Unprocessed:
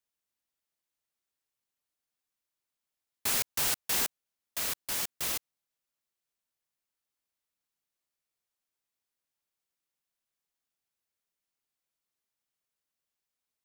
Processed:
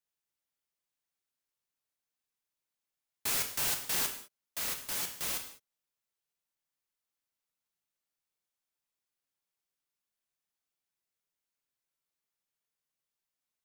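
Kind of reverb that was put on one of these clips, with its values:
reverb whose tail is shaped and stops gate 230 ms falling, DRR 4 dB
level −3.5 dB

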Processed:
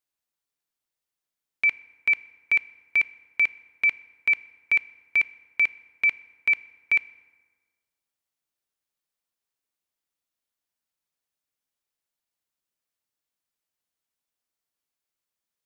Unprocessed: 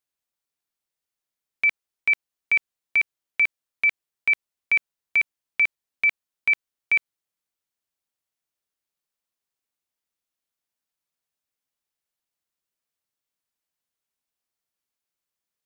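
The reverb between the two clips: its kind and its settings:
feedback delay network reverb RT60 1.5 s, low-frequency decay 1×, high-frequency decay 0.6×, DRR 16 dB
level −1 dB

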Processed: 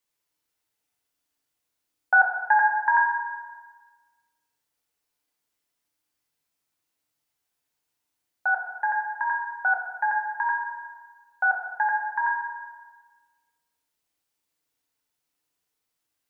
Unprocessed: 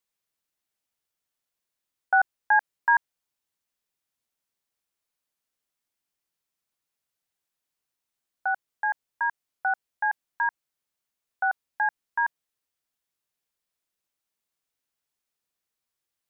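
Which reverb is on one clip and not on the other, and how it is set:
feedback delay network reverb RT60 1.4 s, low-frequency decay 1×, high-frequency decay 0.8×, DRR −1 dB
level +1 dB

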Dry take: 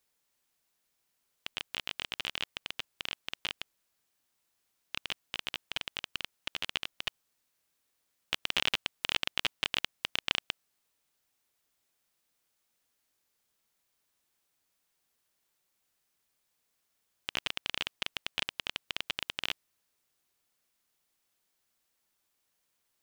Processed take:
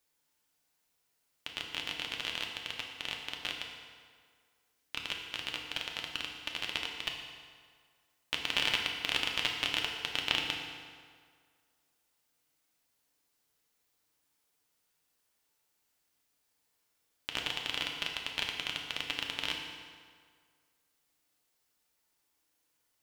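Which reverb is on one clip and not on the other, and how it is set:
feedback delay network reverb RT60 1.9 s, low-frequency decay 0.9×, high-frequency decay 0.75×, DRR 0.5 dB
level −1.5 dB

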